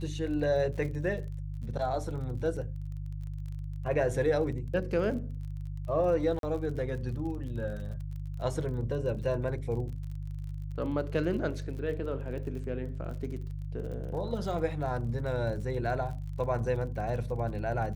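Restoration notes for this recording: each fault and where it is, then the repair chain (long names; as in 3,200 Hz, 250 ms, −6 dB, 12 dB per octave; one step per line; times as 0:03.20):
surface crackle 36 per second −40 dBFS
mains hum 50 Hz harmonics 3 −37 dBFS
0:06.39–0:06.43: drop-out 42 ms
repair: click removal
hum removal 50 Hz, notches 3
repair the gap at 0:06.39, 42 ms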